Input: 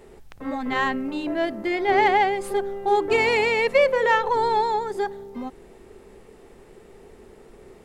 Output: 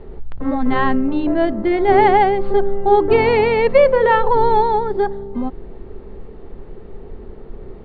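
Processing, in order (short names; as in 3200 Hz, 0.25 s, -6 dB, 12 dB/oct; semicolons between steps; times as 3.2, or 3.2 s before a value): rippled Chebyshev low-pass 4600 Hz, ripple 3 dB; tilt -3.5 dB/oct; gain +6 dB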